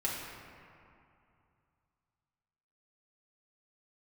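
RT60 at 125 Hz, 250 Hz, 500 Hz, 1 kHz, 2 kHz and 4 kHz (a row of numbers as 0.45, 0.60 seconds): 3.2, 2.8, 2.5, 2.7, 2.2, 1.4 seconds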